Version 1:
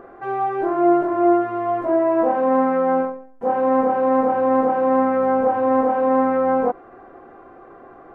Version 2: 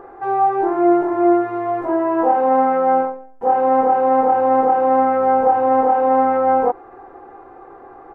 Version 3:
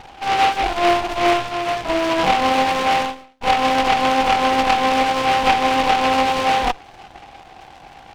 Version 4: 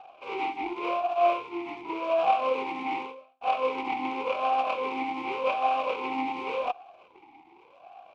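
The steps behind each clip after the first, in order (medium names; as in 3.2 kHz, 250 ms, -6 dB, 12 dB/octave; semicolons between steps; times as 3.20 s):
peaking EQ 890 Hz +10 dB 0.34 oct; comb 2.4 ms, depth 44%
comb filter that takes the minimum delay 1.2 ms; delay time shaken by noise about 1.6 kHz, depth 0.1 ms
talking filter a-u 0.88 Hz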